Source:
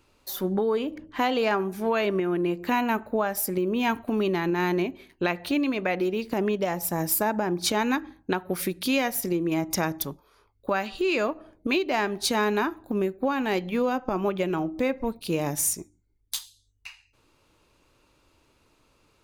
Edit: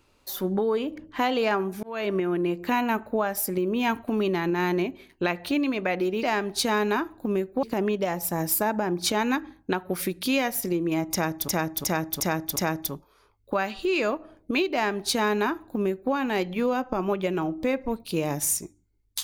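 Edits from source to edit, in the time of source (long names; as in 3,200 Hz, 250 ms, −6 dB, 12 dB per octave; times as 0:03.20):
0:01.83–0:02.13: fade in linear
0:09.72–0:10.08: repeat, 5 plays
0:11.89–0:13.29: duplicate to 0:06.23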